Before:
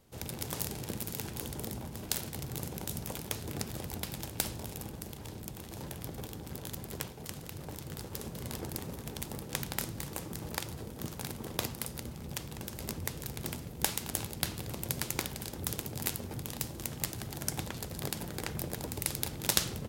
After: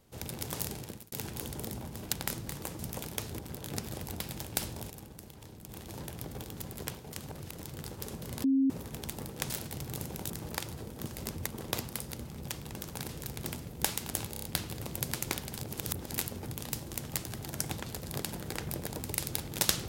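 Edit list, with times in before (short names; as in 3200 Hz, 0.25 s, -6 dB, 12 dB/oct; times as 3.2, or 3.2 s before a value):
0.72–1.12 fade out
2.12–2.92 swap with 9.63–10.3
4.73–5.52 gain -6 dB
6.4–6.7 move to 3.52
7.41–7.72 reverse
8.57–8.83 bleep 269 Hz -22.5 dBFS
11.07–11.33 swap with 12.69–13.09
14.32 stutter 0.03 s, 5 plays
15.47–16 reverse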